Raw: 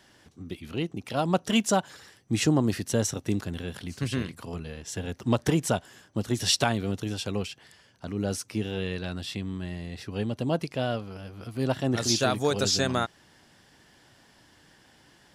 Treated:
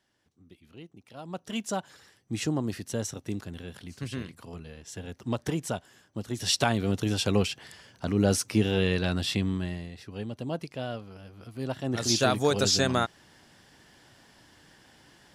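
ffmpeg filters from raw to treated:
-af "volume=4.47,afade=t=in:st=1.19:d=0.71:silence=0.298538,afade=t=in:st=6.33:d=1.02:silence=0.251189,afade=t=out:st=9.43:d=0.51:silence=0.251189,afade=t=in:st=11.8:d=0.44:silence=0.446684"

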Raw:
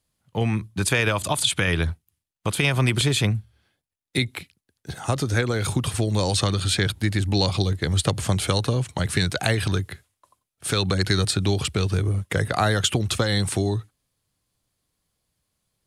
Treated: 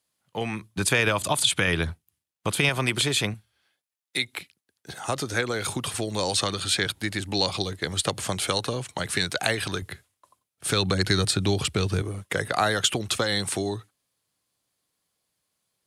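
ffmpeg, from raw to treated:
-af "asetnsamples=n=441:p=0,asendcmd='0.77 highpass f 150;2.69 highpass f 350;3.34 highpass f 950;4.33 highpass f 410;9.82 highpass f 110;12.02 highpass f 350',highpass=f=470:p=1"

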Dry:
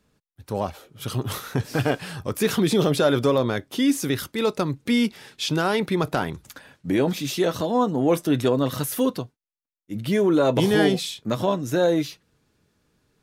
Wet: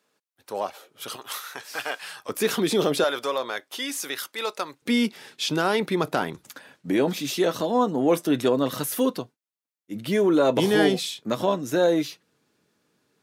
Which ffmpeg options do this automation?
-af "asetnsamples=n=441:p=0,asendcmd='1.16 highpass f 960;2.29 highpass f 270;3.04 highpass f 710;4.82 highpass f 200',highpass=450"

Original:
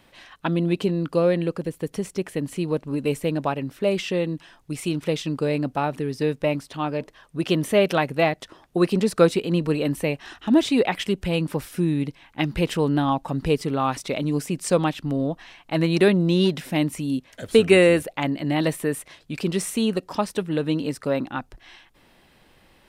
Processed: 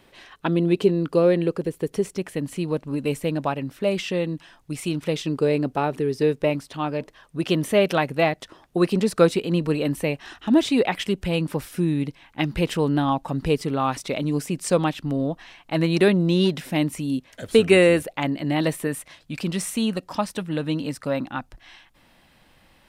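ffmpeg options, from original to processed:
-af "asetnsamples=n=441:p=0,asendcmd='2.15 equalizer g -2.5;5.16 equalizer g 7.5;6.5 equalizer g -0.5;18.87 equalizer g -8.5',equalizer=f=400:t=o:w=0.39:g=7.5"

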